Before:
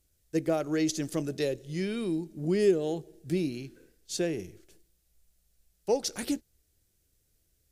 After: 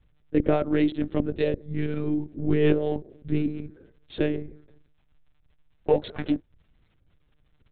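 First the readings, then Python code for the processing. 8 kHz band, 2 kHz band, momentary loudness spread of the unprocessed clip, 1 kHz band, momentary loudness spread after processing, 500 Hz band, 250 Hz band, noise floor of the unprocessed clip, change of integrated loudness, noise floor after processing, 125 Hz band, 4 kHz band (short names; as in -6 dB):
under -40 dB, +3.5 dB, 12 LU, +5.0 dB, 11 LU, +3.0 dB, +5.0 dB, -73 dBFS, +4.0 dB, -65 dBFS, +6.5 dB, -3.0 dB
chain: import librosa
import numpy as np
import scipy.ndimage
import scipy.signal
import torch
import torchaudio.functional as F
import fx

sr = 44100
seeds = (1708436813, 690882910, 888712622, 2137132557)

y = fx.wiener(x, sr, points=15)
y = fx.peak_eq(y, sr, hz=70.0, db=11.0, octaves=0.55)
y = fx.rider(y, sr, range_db=10, speed_s=2.0)
y = fx.dmg_crackle(y, sr, seeds[0], per_s=85.0, level_db=-55.0)
y = fx.lpc_monotone(y, sr, seeds[1], pitch_hz=150.0, order=16)
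y = y * 10.0 ** (4.5 / 20.0)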